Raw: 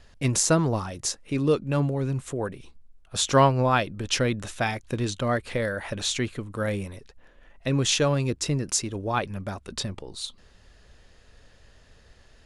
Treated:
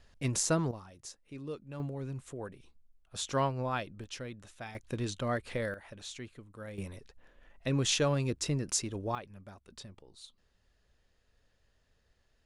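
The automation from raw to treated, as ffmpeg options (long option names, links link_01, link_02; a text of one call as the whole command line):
ffmpeg -i in.wav -af "asetnsamples=nb_out_samples=441:pad=0,asendcmd='0.71 volume volume -18.5dB;1.8 volume volume -12dB;4.04 volume volume -18dB;4.75 volume volume -7.5dB;5.74 volume volume -17dB;6.78 volume volume -6dB;9.15 volume volume -17.5dB',volume=-8dB" out.wav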